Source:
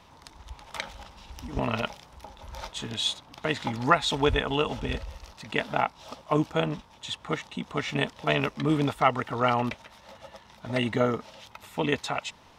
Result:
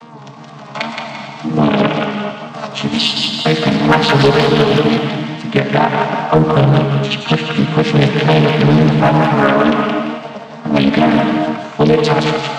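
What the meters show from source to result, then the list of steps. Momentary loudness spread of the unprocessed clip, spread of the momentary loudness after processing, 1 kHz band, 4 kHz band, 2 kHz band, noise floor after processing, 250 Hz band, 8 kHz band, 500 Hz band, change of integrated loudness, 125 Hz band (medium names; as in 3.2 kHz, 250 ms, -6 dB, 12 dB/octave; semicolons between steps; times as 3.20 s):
21 LU, 12 LU, +13.0 dB, +13.5 dB, +13.5 dB, -33 dBFS, +18.0 dB, +8.5 dB, +16.0 dB, +15.0 dB, +19.0 dB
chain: vocoder on a held chord bare fifth, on D3; dynamic bell 3.6 kHz, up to +6 dB, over -50 dBFS, Q 0.83; in parallel at -1.5 dB: compression, threshold -33 dBFS, peak gain reduction 15.5 dB; on the sum: hard clipper -16 dBFS, distortion -19 dB; wow and flutter 110 cents; on a send: thinning echo 171 ms, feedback 39%, high-pass 1.1 kHz, level -3 dB; on the sum: gated-style reverb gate 480 ms flat, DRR 4.5 dB; loudness maximiser +16.5 dB; loudspeaker Doppler distortion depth 0.44 ms; trim -1 dB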